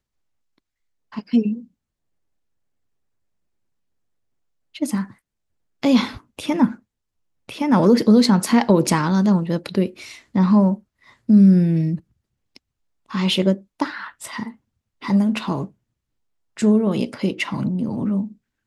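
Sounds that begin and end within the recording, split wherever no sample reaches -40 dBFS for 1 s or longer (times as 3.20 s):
1.12–1.64 s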